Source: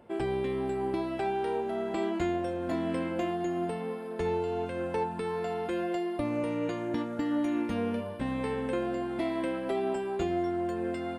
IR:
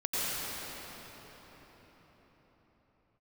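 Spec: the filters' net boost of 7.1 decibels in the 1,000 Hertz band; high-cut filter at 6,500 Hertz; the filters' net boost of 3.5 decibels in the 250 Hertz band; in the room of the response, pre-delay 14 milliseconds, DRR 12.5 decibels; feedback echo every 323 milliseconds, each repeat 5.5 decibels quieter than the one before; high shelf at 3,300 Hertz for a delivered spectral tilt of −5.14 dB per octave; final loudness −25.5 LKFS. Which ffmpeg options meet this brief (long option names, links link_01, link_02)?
-filter_complex "[0:a]lowpass=6500,equalizer=frequency=250:width_type=o:gain=4,equalizer=frequency=1000:width_type=o:gain=9,highshelf=frequency=3300:gain=7,aecho=1:1:323|646|969|1292|1615|1938|2261:0.531|0.281|0.149|0.079|0.0419|0.0222|0.0118,asplit=2[link_01][link_02];[1:a]atrim=start_sample=2205,adelay=14[link_03];[link_02][link_03]afir=irnorm=-1:irlink=0,volume=-22.5dB[link_04];[link_01][link_04]amix=inputs=2:normalize=0,volume=0.5dB"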